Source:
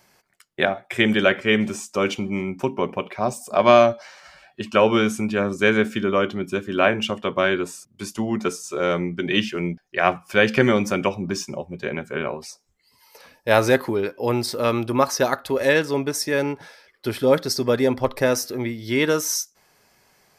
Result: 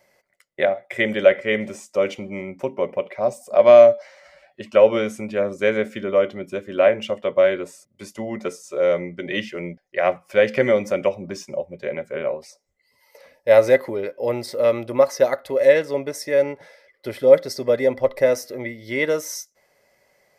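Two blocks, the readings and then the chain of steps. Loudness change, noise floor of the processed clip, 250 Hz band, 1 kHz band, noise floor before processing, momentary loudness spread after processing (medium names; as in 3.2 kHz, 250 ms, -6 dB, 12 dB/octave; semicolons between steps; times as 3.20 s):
+2.0 dB, -67 dBFS, -6.5 dB, -4.5 dB, -64 dBFS, 15 LU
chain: small resonant body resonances 560/2000 Hz, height 16 dB, ringing for 30 ms; trim -7.5 dB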